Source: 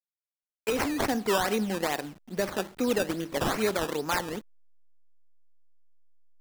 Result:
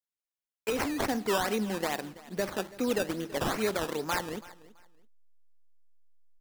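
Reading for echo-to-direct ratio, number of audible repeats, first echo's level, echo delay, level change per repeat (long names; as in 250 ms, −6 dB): −19.5 dB, 2, −19.5 dB, 331 ms, −13.0 dB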